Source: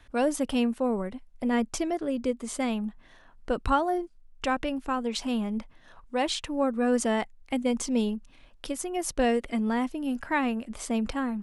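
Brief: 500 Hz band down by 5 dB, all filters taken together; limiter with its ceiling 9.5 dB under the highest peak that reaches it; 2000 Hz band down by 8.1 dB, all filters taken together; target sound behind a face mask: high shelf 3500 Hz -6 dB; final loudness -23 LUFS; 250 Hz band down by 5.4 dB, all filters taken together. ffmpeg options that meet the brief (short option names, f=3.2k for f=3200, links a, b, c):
-af "equalizer=f=250:t=o:g=-5,equalizer=f=500:t=o:g=-4,equalizer=f=2k:t=o:g=-8.5,alimiter=level_in=1dB:limit=-24dB:level=0:latency=1,volume=-1dB,highshelf=f=3.5k:g=-6,volume=13dB"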